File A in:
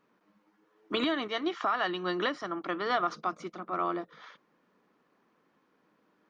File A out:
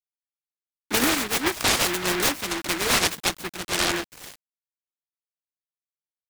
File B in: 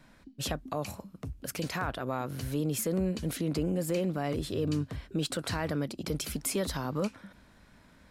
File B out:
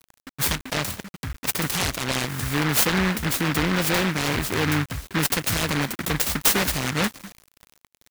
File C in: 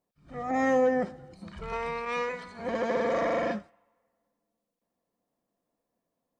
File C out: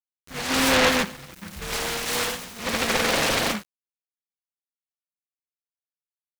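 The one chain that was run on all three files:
high-shelf EQ 4,500 Hz +11 dB
bit-depth reduction 8 bits, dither none
short delay modulated by noise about 1,500 Hz, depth 0.36 ms
loudness normalisation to −23 LKFS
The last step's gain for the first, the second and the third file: +6.5, +7.5, +4.5 decibels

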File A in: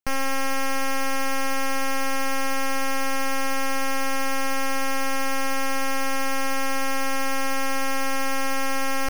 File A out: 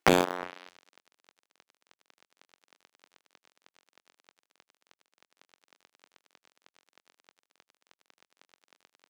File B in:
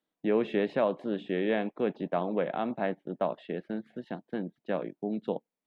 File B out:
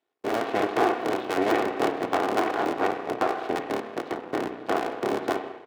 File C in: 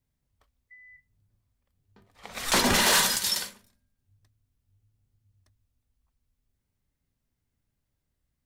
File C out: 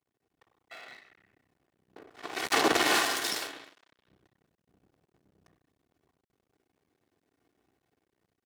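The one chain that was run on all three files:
sub-harmonics by changed cycles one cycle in 3, inverted
spectral tilt −1.5 dB per octave
comb filter 2.7 ms, depth 66%
spring reverb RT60 1 s, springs 32/50 ms, chirp 45 ms, DRR 7 dB
downward compressor 1.5 to 1, threshold −40 dBFS
notch filter 1,100 Hz, Q 21
half-wave rectification
high-shelf EQ 5,500 Hz −7.5 dB
automatic gain control gain up to 5 dB
high-pass filter 290 Hz 12 dB per octave
loudness normalisation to −27 LKFS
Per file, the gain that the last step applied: +20.0, +9.0, +5.5 decibels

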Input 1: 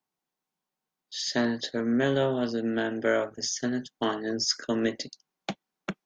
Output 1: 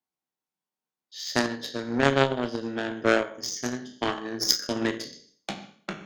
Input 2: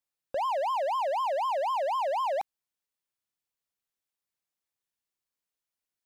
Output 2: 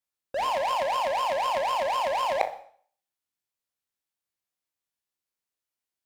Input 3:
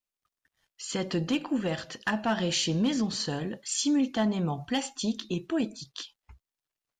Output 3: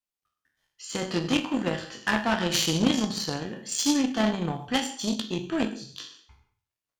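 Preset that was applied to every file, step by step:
peak hold with a decay on every bin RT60 0.50 s
reverb whose tail is shaped and stops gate 170 ms flat, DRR 9 dB
harmonic generator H 3 −11 dB, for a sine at −11 dBFS
loudness normalisation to −27 LKFS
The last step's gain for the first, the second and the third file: +8.5, +13.5, +12.0 decibels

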